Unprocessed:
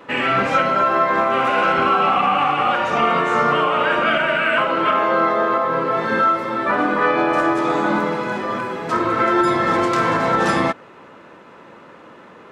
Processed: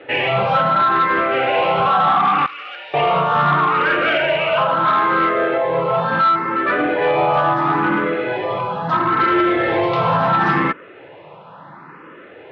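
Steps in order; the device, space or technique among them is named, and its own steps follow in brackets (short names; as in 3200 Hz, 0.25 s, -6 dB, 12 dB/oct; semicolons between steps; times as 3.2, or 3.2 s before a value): barber-pole phaser into a guitar amplifier (endless phaser +0.73 Hz; soft clip -16.5 dBFS, distortion -15 dB; speaker cabinet 77–3500 Hz, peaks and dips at 150 Hz +8 dB, 230 Hz -9 dB, 800 Hz +3 dB); 2.46–2.94 differentiator; gain +6 dB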